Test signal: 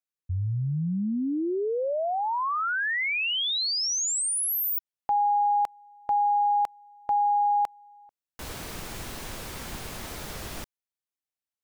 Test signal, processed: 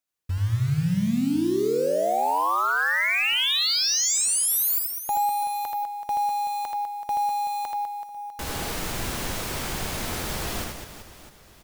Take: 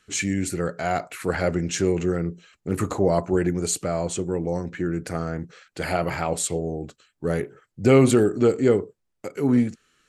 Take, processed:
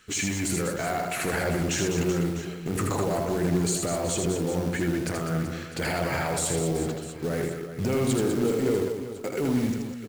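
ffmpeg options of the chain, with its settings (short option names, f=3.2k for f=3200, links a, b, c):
-af "acrusher=bits=4:mode=log:mix=0:aa=0.000001,acompressor=threshold=-29dB:ratio=6:attack=0.27:release=27,aecho=1:1:80|200|380|650|1055:0.631|0.398|0.251|0.158|0.1,volume=6dB"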